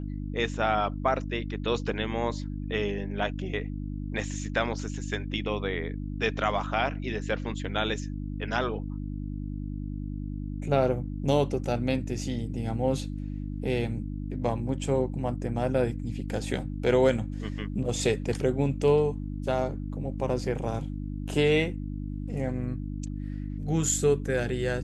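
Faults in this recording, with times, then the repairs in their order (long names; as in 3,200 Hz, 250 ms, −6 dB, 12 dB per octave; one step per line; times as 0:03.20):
mains hum 50 Hz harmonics 6 −34 dBFS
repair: hum removal 50 Hz, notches 6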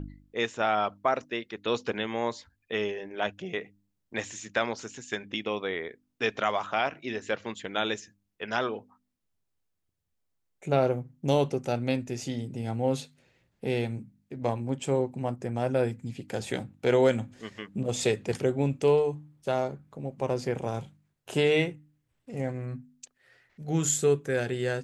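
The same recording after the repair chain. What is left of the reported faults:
none of them is left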